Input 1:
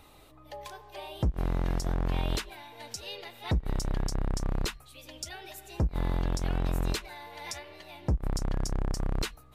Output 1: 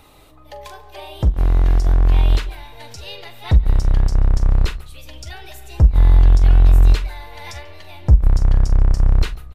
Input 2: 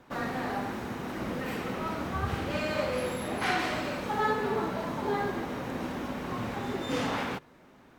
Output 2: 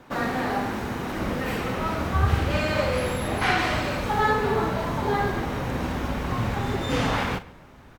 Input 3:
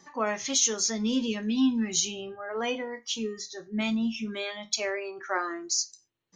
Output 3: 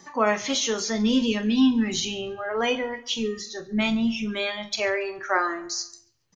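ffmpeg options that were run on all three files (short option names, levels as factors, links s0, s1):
-filter_complex "[0:a]asubboost=boost=4.5:cutoff=110,acrossover=split=4200[s0][s1];[s1]acompressor=threshold=0.00631:ratio=4:attack=1:release=60[s2];[s0][s2]amix=inputs=2:normalize=0,asplit=2[s3][s4];[s4]adelay=43,volume=0.224[s5];[s3][s5]amix=inputs=2:normalize=0,asplit=2[s6][s7];[s7]adelay=140,lowpass=f=3700:p=1,volume=0.1,asplit=2[s8][s9];[s9]adelay=140,lowpass=f=3700:p=1,volume=0.41,asplit=2[s10][s11];[s11]adelay=140,lowpass=f=3700:p=1,volume=0.41[s12];[s8][s10][s12]amix=inputs=3:normalize=0[s13];[s6][s13]amix=inputs=2:normalize=0,volume=2.11"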